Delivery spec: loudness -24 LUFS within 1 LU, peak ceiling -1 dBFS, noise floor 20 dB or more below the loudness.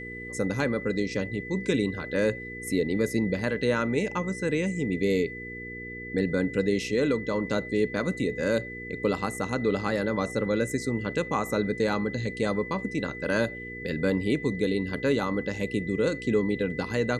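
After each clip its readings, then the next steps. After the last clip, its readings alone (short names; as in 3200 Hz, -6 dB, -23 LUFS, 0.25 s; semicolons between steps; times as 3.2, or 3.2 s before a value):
hum 60 Hz; harmonics up to 480 Hz; hum level -40 dBFS; steady tone 2000 Hz; tone level -38 dBFS; loudness -28.0 LUFS; peak -12.0 dBFS; loudness target -24.0 LUFS
-> de-hum 60 Hz, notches 8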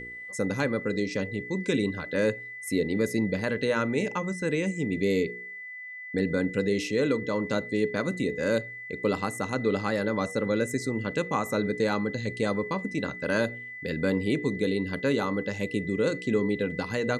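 hum none; steady tone 2000 Hz; tone level -38 dBFS
-> notch 2000 Hz, Q 30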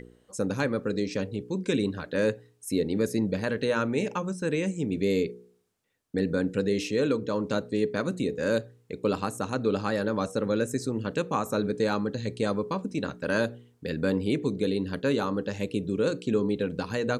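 steady tone none; loudness -28.5 LUFS; peak -13.0 dBFS; loudness target -24.0 LUFS
-> gain +4.5 dB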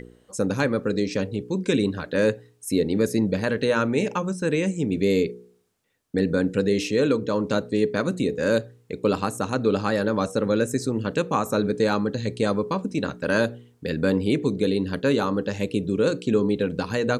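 loudness -24.0 LUFS; peak -8.5 dBFS; noise floor -60 dBFS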